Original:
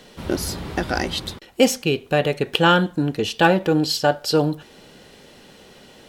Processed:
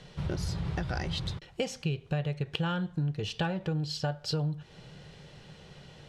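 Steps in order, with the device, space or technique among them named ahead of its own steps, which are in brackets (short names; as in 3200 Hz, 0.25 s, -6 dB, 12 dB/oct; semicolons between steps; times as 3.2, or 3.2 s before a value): jukebox (LPF 6400 Hz 12 dB/oct; resonant low shelf 190 Hz +7.5 dB, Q 3; compressor 5:1, threshold -23 dBFS, peak gain reduction 13.5 dB); gain -6 dB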